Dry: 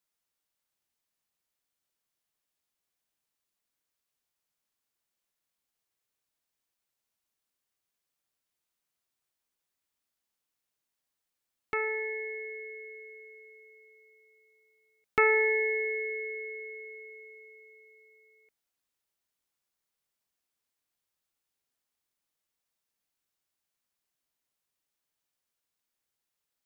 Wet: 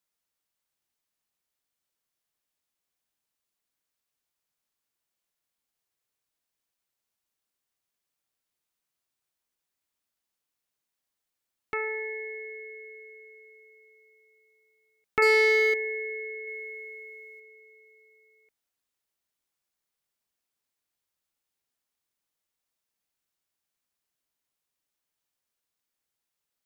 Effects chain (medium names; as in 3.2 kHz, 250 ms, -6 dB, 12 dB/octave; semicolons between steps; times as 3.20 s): 15.22–15.74 s: waveshaping leveller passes 2; 16.47–17.40 s: treble shelf 2.2 kHz +7.5 dB